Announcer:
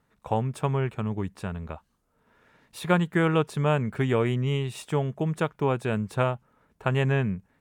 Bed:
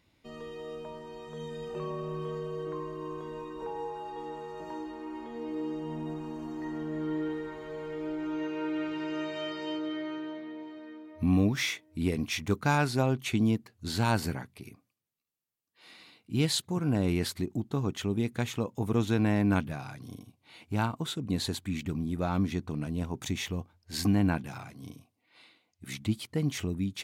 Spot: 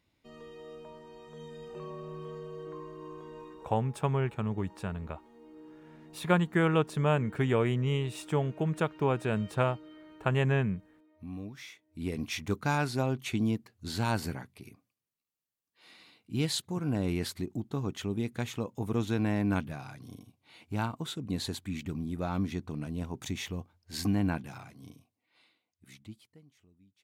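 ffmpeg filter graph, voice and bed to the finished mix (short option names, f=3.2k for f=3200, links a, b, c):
-filter_complex "[0:a]adelay=3400,volume=-3dB[a];[1:a]volume=7.5dB,afade=t=out:st=3.48:d=0.25:silence=0.298538,afade=t=in:st=11.75:d=0.49:silence=0.211349,afade=t=out:st=24.38:d=2.07:silence=0.0354813[b];[a][b]amix=inputs=2:normalize=0"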